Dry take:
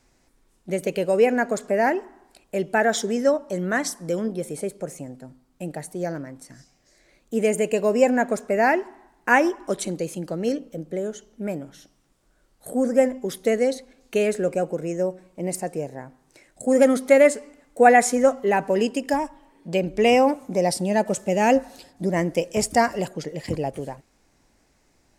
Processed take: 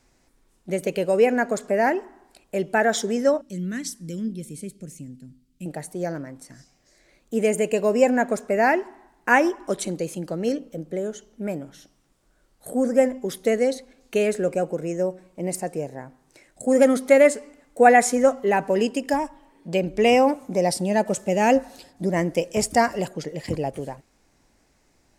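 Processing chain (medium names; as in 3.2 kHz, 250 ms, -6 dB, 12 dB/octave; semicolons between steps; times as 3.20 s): 3.41–5.66 s: FFT filter 240 Hz 0 dB, 790 Hz -26 dB, 2.9 kHz -3 dB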